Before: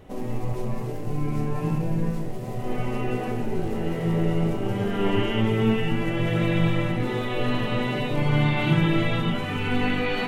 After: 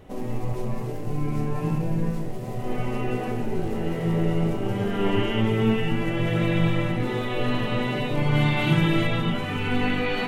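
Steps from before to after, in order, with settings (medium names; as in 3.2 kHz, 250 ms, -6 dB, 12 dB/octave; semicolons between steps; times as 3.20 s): 8.35–9.07 s: treble shelf 4.3 kHz +6 dB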